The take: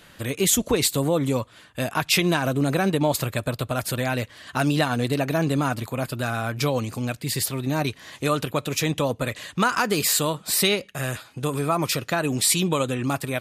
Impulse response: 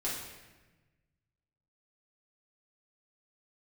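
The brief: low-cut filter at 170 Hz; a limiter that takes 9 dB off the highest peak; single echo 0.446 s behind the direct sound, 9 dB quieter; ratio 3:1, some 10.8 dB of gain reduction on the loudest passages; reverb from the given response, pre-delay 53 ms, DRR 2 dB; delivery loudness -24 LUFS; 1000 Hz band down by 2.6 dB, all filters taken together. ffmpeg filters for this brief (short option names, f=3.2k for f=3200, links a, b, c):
-filter_complex "[0:a]highpass=170,equalizer=f=1k:t=o:g=-3.5,acompressor=threshold=-32dB:ratio=3,alimiter=limit=-24dB:level=0:latency=1,aecho=1:1:446:0.355,asplit=2[a][b];[1:a]atrim=start_sample=2205,adelay=53[c];[b][c]afir=irnorm=-1:irlink=0,volume=-6.5dB[d];[a][d]amix=inputs=2:normalize=0,volume=8.5dB"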